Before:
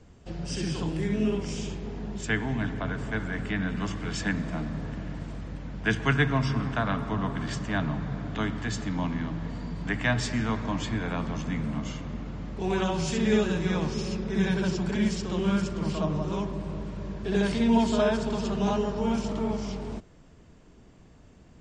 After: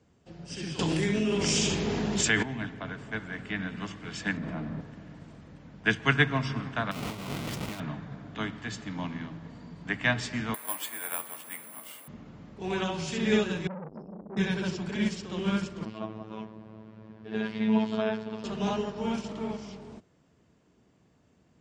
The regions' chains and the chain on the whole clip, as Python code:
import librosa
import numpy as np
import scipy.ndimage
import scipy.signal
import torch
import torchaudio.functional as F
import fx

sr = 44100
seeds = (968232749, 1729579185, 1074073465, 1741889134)

y = fx.chain(x, sr, fx.bass_treble(bass_db=-2, treble_db=7),
    fx.env_flatten(amount_pct=100), at=(0.79, 2.43))
y = fx.chain(y, sr, fx.lowpass(hz=1400.0, slope=6),
    fx.env_flatten(amount_pct=100), at=(4.37, 4.81))
y = fx.chain(y, sr, fx.halfwave_hold(),
    fx.notch(hz=1700.0, q=5.7),
    fx.over_compress(threshold_db=-29.0, ratio=-1.0), at=(6.91, 7.8))
y = fx.chain(y, sr, fx.highpass(hz=560.0, slope=12),
    fx.resample_bad(factor=4, down='filtered', up='zero_stuff'), at=(10.54, 12.08))
y = fx.chain(y, sr, fx.spec_expand(power=3.2),
    fx.peak_eq(hz=2000.0, db=13.5, octaves=2.1),
    fx.transformer_sat(knee_hz=590.0), at=(13.67, 14.37))
y = fx.chain(y, sr, fx.lowpass(hz=3100.0, slope=12),
    fx.robotise(hz=109.0), at=(15.85, 18.44))
y = scipy.signal.sosfilt(scipy.signal.butter(2, 100.0, 'highpass', fs=sr, output='sos'), y)
y = fx.dynamic_eq(y, sr, hz=2700.0, q=0.8, threshold_db=-46.0, ratio=4.0, max_db=5)
y = fx.upward_expand(y, sr, threshold_db=-35.0, expansion=1.5)